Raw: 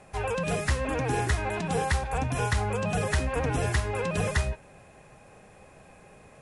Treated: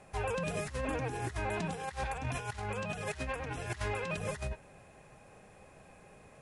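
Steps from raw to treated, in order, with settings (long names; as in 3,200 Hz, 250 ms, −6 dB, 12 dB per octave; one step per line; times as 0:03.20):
0:01.74–0:04.17: parametric band 2,800 Hz +6 dB 3 octaves
compressor whose output falls as the input rises −29 dBFS, ratio −0.5
level −7 dB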